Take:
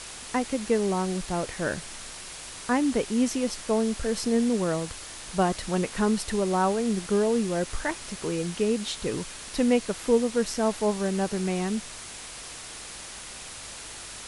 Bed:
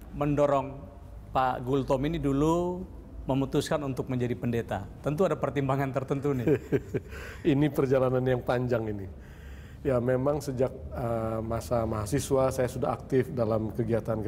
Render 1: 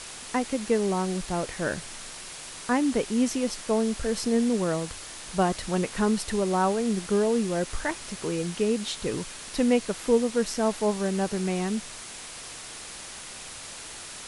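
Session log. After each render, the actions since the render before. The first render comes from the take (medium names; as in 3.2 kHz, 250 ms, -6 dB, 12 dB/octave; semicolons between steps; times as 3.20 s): de-hum 50 Hz, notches 2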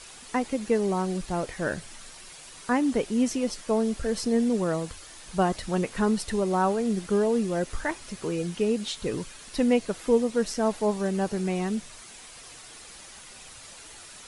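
noise reduction 8 dB, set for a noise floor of -41 dBFS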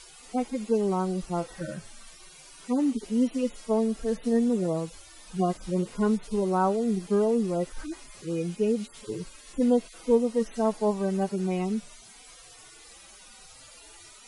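harmonic-percussive separation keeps harmonic; band-stop 1.7 kHz, Q 17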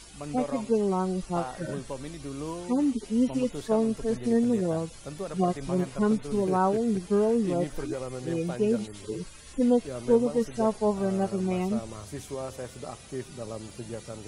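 add bed -10.5 dB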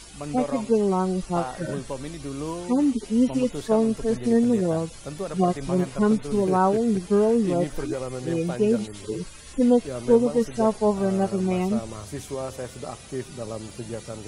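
trim +4 dB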